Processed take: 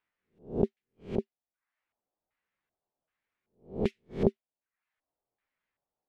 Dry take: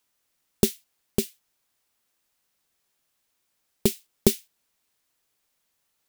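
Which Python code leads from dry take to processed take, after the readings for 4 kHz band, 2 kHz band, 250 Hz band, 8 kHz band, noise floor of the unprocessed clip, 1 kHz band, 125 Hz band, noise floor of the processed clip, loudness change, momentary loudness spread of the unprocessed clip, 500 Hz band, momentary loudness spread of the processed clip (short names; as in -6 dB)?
-20.0 dB, -8.5 dB, -4.5 dB, under -35 dB, -75 dBFS, -0.5 dB, -3.5 dB, under -85 dBFS, -6.0 dB, 12 LU, -3.0 dB, 15 LU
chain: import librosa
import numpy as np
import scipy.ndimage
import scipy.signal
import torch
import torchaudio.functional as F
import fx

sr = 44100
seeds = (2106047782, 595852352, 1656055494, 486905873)

y = fx.spec_swells(x, sr, rise_s=0.35)
y = fx.dereverb_blind(y, sr, rt60_s=0.57)
y = fx.filter_lfo_lowpass(y, sr, shape='square', hz=1.3, low_hz=730.0, high_hz=2000.0, q=2.0)
y = y * librosa.db_to_amplitude(-8.0)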